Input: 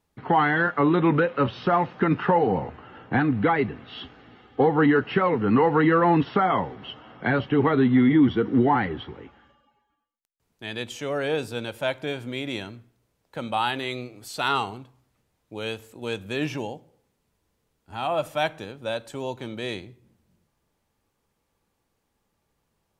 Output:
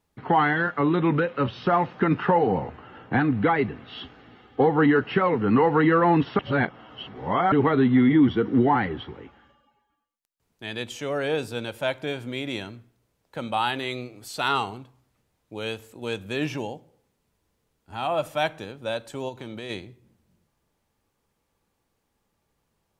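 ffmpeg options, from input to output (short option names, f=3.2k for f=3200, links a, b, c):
-filter_complex "[0:a]asettb=1/sr,asplit=3[a][b][c];[a]atrim=end=0.534[d];[b]atrim=start=0.53:end=1.66,asetpts=PTS-STARTPTS,afade=t=in:d=0.004:c=qsin,afade=t=out:st=1.126:d=0.004:c=qsin,equalizer=f=770:t=o:w=3:g=-3[e];[c]atrim=start=1.656[f];[d][e]acrossfade=d=0.004:c1=hsin:c2=qsin[g];[g][f]acrossfade=d=0.004:c1=qsin:c2=hsin,asplit=3[h][i][j];[h]afade=t=out:st=19.28:d=0.02[k];[i]acompressor=threshold=-31dB:ratio=6:attack=3.2:release=140:knee=1:detection=peak,afade=t=in:st=19.28:d=0.02,afade=t=out:st=19.69:d=0.02[l];[j]afade=t=in:st=19.69:d=0.02[m];[k][l][m]amix=inputs=3:normalize=0,asplit=3[n][o][p];[n]atrim=end=6.392[q];[o]atrim=start=6.388:end=7.522,asetpts=PTS-STARTPTS,areverse[r];[p]atrim=start=7.518[s];[q][r]acrossfade=d=0.004:c1=hsin:c2=hsin[t];[t][s]acrossfade=d=0.004:c1=hsin:c2=hsin"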